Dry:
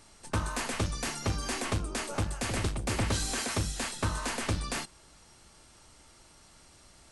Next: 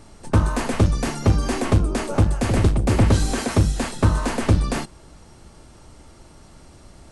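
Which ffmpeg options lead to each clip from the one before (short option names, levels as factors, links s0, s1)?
-af "tiltshelf=f=970:g=6.5,volume=2.66"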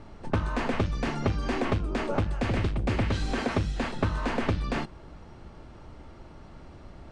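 -filter_complex "[0:a]acrossover=split=1700[s0][s1];[s0]acompressor=threshold=0.0631:ratio=6[s2];[s1]lowpass=2900[s3];[s2][s3]amix=inputs=2:normalize=0"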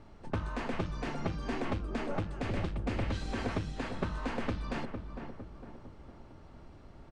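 -filter_complex "[0:a]asplit=2[s0][s1];[s1]adelay=456,lowpass=f=1300:p=1,volume=0.501,asplit=2[s2][s3];[s3]adelay=456,lowpass=f=1300:p=1,volume=0.52,asplit=2[s4][s5];[s5]adelay=456,lowpass=f=1300:p=1,volume=0.52,asplit=2[s6][s7];[s7]adelay=456,lowpass=f=1300:p=1,volume=0.52,asplit=2[s8][s9];[s9]adelay=456,lowpass=f=1300:p=1,volume=0.52,asplit=2[s10][s11];[s11]adelay=456,lowpass=f=1300:p=1,volume=0.52[s12];[s0][s2][s4][s6][s8][s10][s12]amix=inputs=7:normalize=0,volume=0.422"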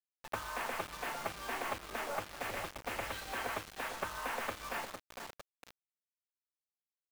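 -filter_complex "[0:a]acrossover=split=570 3900:gain=0.0891 1 0.0891[s0][s1][s2];[s0][s1][s2]amix=inputs=3:normalize=0,acrusher=bits=7:mix=0:aa=0.000001,volume=1.41"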